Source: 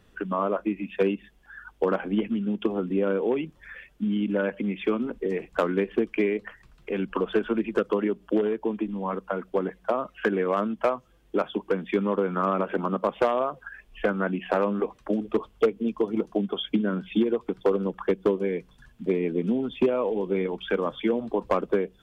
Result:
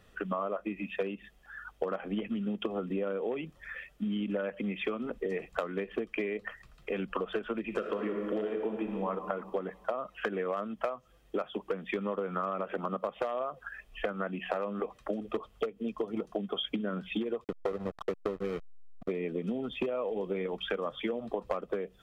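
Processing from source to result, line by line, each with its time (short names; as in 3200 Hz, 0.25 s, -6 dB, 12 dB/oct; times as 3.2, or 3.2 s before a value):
7.61–9.09 reverb throw, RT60 1.8 s, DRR 4.5 dB
17.44–19.09 backlash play -26 dBFS
whole clip: low shelf 220 Hz -5 dB; comb 1.6 ms, depth 35%; compressor 10:1, threshold -29 dBFS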